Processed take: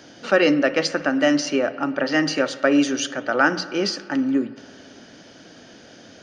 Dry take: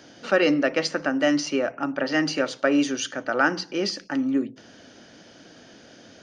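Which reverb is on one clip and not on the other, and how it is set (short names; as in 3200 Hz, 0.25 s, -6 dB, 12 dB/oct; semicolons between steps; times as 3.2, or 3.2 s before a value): spring tank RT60 2.4 s, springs 56 ms, chirp 75 ms, DRR 15.5 dB; gain +3 dB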